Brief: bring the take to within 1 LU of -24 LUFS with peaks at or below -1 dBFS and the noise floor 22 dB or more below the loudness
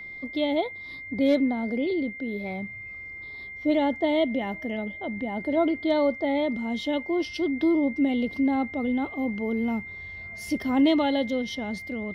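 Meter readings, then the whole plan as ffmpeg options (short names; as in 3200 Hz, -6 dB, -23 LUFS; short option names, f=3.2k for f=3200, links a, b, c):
steady tone 2100 Hz; tone level -37 dBFS; loudness -26.5 LUFS; peak -12.5 dBFS; loudness target -24.0 LUFS
-> -af "bandreject=f=2.1k:w=30"
-af "volume=2.5dB"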